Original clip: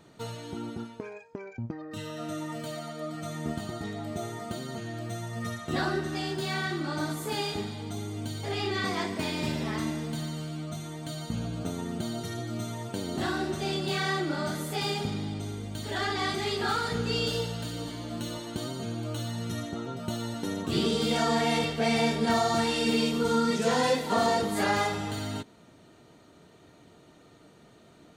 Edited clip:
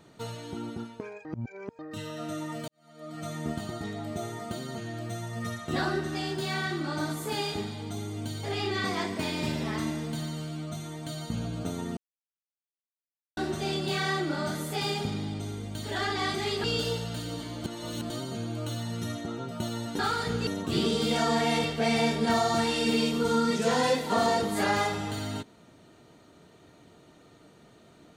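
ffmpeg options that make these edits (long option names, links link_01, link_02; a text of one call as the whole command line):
ffmpeg -i in.wav -filter_complex "[0:a]asplit=11[link_01][link_02][link_03][link_04][link_05][link_06][link_07][link_08][link_09][link_10][link_11];[link_01]atrim=end=1.252[link_12];[link_02]atrim=start=1.248:end=1.792,asetpts=PTS-STARTPTS,areverse[link_13];[link_03]atrim=start=1.788:end=2.68,asetpts=PTS-STARTPTS,afade=type=out:start_time=0.888:duration=0.004:curve=hsin[link_14];[link_04]atrim=start=2.68:end=11.97,asetpts=PTS-STARTPTS,afade=type=in:duration=0.55:curve=qua,afade=type=out:start_time=9.286:duration=0.004:curve=hsin[link_15];[link_05]atrim=start=11.97:end=13.37,asetpts=PTS-STARTPTS,volume=0[link_16];[link_06]atrim=start=13.37:end=16.642,asetpts=PTS-STARTPTS,afade=type=in:duration=0.004:curve=hsin[link_17];[link_07]atrim=start=17.118:end=18.122[link_18];[link_08]atrim=start=18.118:end=18.582,asetpts=PTS-STARTPTS,areverse[link_19];[link_09]atrim=start=18.578:end=20.472[link_20];[link_10]atrim=start=16.638:end=17.122[link_21];[link_11]atrim=start=20.468[link_22];[link_12][link_13]acrossfade=duration=0.004:curve1=hsin:curve2=hsin[link_23];[link_14][link_15][link_16][link_17]concat=n=4:v=0:a=1[link_24];[link_23][link_24]acrossfade=duration=0.004:curve1=hsin:curve2=hsin[link_25];[link_25][link_18]acrossfade=duration=0.004:curve1=hsin:curve2=hsin[link_26];[link_26][link_19]acrossfade=duration=0.004:curve1=hsin:curve2=hsin[link_27];[link_27][link_20]acrossfade=duration=0.004:curve1=hsin:curve2=hsin[link_28];[link_28][link_21]acrossfade=duration=0.004:curve1=hsin:curve2=hsin[link_29];[link_29][link_22]acrossfade=duration=0.004:curve1=hsin:curve2=hsin" out.wav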